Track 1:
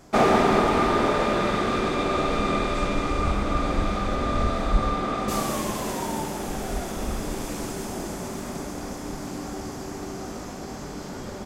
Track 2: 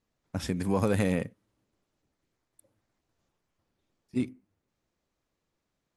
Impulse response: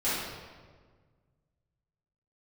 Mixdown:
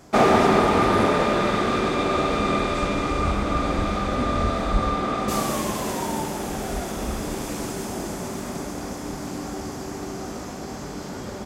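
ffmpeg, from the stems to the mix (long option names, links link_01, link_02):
-filter_complex "[0:a]volume=2dB[link_01];[1:a]volume=-2.5dB[link_02];[link_01][link_02]amix=inputs=2:normalize=0,highpass=42"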